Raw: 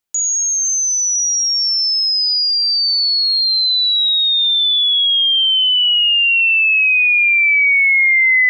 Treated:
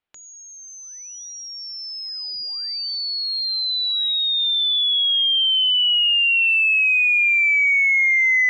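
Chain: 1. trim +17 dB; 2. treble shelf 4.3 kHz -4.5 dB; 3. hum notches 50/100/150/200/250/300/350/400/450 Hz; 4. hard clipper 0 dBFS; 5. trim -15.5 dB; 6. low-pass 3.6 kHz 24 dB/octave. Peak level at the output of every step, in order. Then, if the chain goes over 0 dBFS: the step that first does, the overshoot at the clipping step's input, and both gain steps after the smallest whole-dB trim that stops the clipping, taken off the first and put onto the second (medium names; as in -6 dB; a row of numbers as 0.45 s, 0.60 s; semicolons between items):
+8.5 dBFS, +7.5 dBFS, +7.5 dBFS, 0.0 dBFS, -15.5 dBFS, -14.0 dBFS; step 1, 7.5 dB; step 1 +9 dB, step 5 -7.5 dB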